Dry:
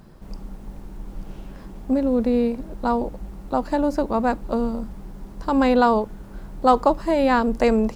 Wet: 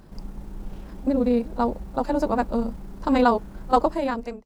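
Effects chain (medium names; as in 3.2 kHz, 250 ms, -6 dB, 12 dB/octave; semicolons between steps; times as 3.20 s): fade out at the end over 1.31 s; granular stretch 0.56×, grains 64 ms; pre-echo 35 ms -23 dB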